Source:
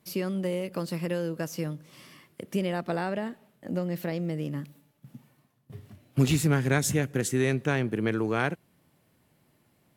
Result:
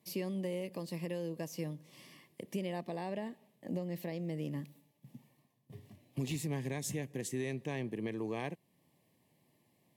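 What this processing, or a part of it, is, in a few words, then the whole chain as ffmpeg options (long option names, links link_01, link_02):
PA system with an anti-feedback notch: -af "highpass=110,asuperstop=centerf=1400:order=4:qfactor=2.4,alimiter=limit=-22.5dB:level=0:latency=1:release=448,volume=-5dB"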